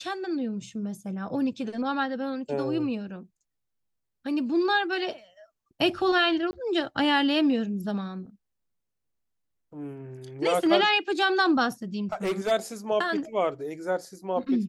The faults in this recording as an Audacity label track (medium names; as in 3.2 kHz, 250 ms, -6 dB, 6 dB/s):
6.510000	6.530000	dropout 20 ms
12.120000	12.520000	clipped -23 dBFS